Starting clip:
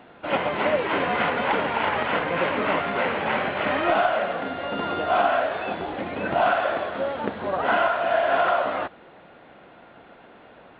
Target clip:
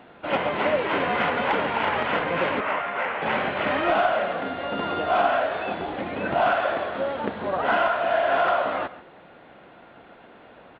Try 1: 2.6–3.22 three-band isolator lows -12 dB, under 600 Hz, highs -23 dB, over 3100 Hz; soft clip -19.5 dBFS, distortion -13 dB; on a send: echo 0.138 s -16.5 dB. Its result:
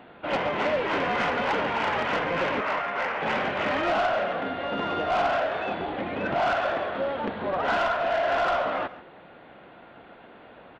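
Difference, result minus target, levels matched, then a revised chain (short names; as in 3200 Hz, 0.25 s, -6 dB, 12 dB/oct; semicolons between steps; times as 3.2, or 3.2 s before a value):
soft clip: distortion +16 dB
2.6–3.22 three-band isolator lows -12 dB, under 600 Hz, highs -23 dB, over 3100 Hz; soft clip -8.5 dBFS, distortion -29 dB; on a send: echo 0.138 s -16.5 dB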